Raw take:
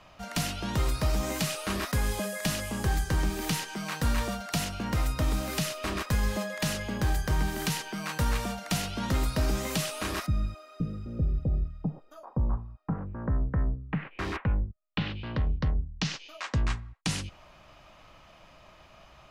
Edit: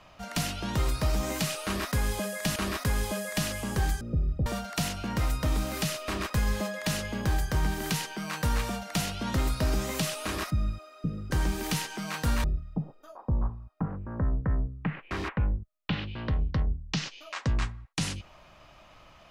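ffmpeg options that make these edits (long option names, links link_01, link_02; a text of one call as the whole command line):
ffmpeg -i in.wav -filter_complex "[0:a]asplit=6[link_01][link_02][link_03][link_04][link_05][link_06];[link_01]atrim=end=2.562[link_07];[link_02]atrim=start=1.638:end=3.092[link_08];[link_03]atrim=start=11.068:end=11.522[link_09];[link_04]atrim=start=4.218:end=11.072[link_10];[link_05]atrim=start=3.088:end=4.222[link_11];[link_06]atrim=start=11.518[link_12];[link_07][link_08]acrossfade=duration=0.004:curve1=hsin:curve2=hsin[link_13];[link_13][link_09]acrossfade=duration=0.004:curve1=hsin:curve2=hsin[link_14];[link_14][link_10]acrossfade=duration=0.004:curve1=hsin:curve2=hsin[link_15];[link_15][link_11]acrossfade=duration=0.004:curve1=hsin:curve2=hsin[link_16];[link_16][link_12]acrossfade=duration=0.004:curve1=hsin:curve2=hsin" out.wav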